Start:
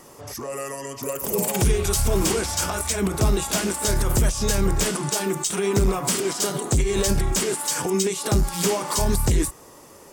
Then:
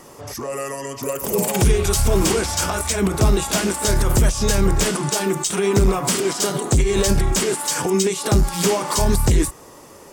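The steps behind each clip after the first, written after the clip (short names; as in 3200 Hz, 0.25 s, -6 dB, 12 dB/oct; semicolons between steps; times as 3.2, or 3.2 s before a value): high shelf 7900 Hz -4 dB; gain +4 dB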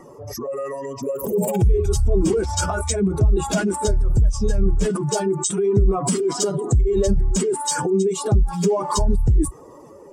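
spectral contrast raised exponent 2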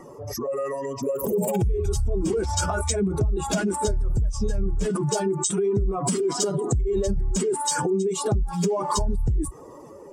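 compressor, threshold -20 dBFS, peak gain reduction 8 dB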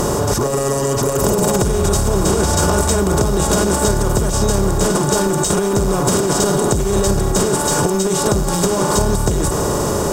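per-bin compression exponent 0.2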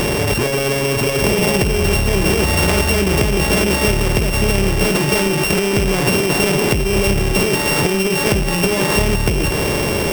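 sample sorter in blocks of 16 samples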